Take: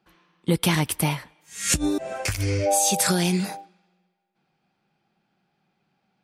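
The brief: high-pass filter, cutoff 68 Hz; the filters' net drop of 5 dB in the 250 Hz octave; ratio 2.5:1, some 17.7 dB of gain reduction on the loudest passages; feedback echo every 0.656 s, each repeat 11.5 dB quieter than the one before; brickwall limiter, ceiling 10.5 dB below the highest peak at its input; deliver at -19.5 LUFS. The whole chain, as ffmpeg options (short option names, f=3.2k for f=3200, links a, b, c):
-af "highpass=68,equalizer=f=250:t=o:g=-8.5,acompressor=threshold=-46dB:ratio=2.5,alimiter=level_in=10.5dB:limit=-24dB:level=0:latency=1,volume=-10.5dB,aecho=1:1:656|1312|1968:0.266|0.0718|0.0194,volume=25dB"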